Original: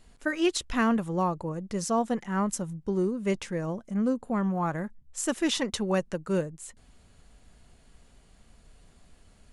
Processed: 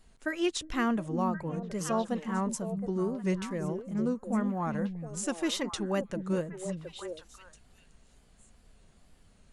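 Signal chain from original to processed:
tape wow and flutter 87 cents
echo through a band-pass that steps 359 ms, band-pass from 180 Hz, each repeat 1.4 octaves, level −3 dB
level −4 dB

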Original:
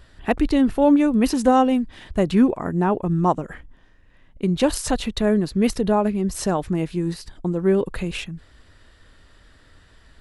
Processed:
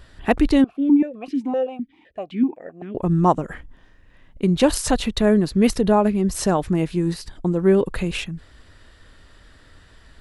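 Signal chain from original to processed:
0:00.64–0:02.95: formant filter that steps through the vowels 7.8 Hz
level +2.5 dB

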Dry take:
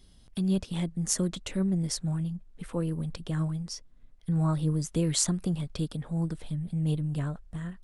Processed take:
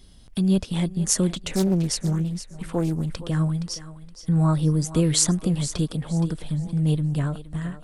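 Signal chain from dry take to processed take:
feedback echo with a high-pass in the loop 469 ms, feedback 27%, high-pass 340 Hz, level −12 dB
0:01.29–0:03.26: highs frequency-modulated by the lows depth 0.47 ms
level +6.5 dB

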